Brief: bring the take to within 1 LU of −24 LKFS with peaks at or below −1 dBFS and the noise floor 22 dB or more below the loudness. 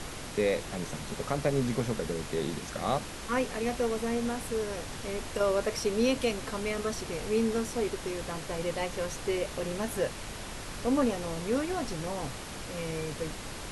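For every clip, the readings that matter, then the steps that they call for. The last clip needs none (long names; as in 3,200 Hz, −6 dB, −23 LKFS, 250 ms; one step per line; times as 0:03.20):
background noise floor −41 dBFS; target noise floor −54 dBFS; integrated loudness −32.0 LKFS; sample peak −14.5 dBFS; target loudness −24.0 LKFS
→ noise reduction from a noise print 13 dB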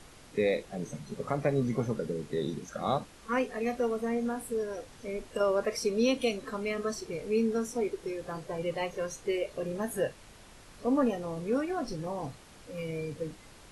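background noise floor −53 dBFS; target noise floor −55 dBFS
→ noise reduction from a noise print 6 dB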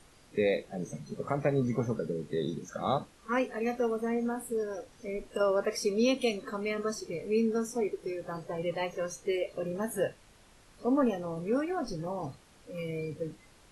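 background noise floor −59 dBFS; integrated loudness −32.5 LKFS; sample peak −15.0 dBFS; target loudness −24.0 LKFS
→ level +8.5 dB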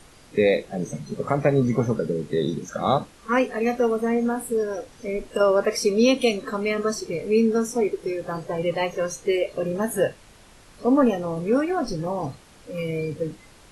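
integrated loudness −24.0 LKFS; sample peak −6.5 dBFS; background noise floor −51 dBFS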